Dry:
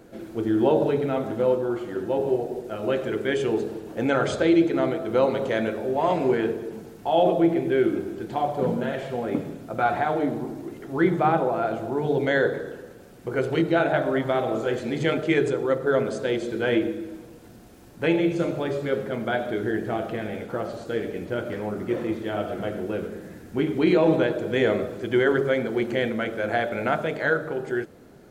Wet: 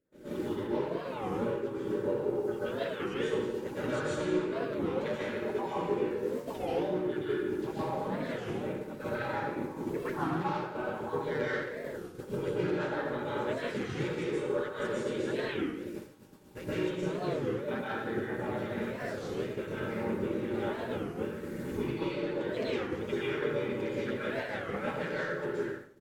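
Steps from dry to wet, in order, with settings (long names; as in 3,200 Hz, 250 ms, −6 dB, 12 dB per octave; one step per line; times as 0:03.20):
time-frequency cells dropped at random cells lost 26%
harmonic generator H 2 −28 dB, 3 −11 dB, 4 −44 dB, 5 −18 dB, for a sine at −9.5 dBFS
downward compressor 8 to 1, threshold −40 dBFS, peak gain reduction 22.5 dB
pitch-shifted copies added −7 semitones −16 dB, −3 semitones −2 dB
dynamic equaliser 240 Hz, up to −4 dB, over −55 dBFS, Q 4.7
wrong playback speed 44.1 kHz file played as 48 kHz
dense smooth reverb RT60 0.99 s, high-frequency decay 0.9×, pre-delay 110 ms, DRR −7.5 dB
downward expander −31 dBFS
Butterworth band-reject 700 Hz, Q 5.5
far-end echo of a speakerphone 90 ms, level −11 dB
wow of a warped record 33 1/3 rpm, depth 250 cents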